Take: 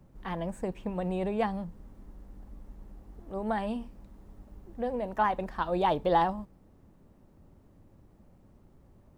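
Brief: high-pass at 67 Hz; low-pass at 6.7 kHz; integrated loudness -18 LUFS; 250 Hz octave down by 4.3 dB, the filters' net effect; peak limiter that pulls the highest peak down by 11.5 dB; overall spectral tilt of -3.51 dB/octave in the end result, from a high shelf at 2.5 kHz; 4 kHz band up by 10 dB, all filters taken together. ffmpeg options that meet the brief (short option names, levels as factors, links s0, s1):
-af "highpass=67,lowpass=6700,equalizer=f=250:t=o:g=-6.5,highshelf=f=2500:g=6.5,equalizer=f=4000:t=o:g=8,volume=7.08,alimiter=limit=0.531:level=0:latency=1"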